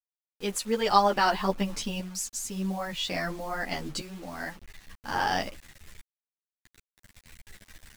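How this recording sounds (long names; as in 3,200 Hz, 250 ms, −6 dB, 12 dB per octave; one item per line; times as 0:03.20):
tremolo saw up 0.5 Hz, depth 75%
a quantiser's noise floor 8 bits, dither none
a shimmering, thickened sound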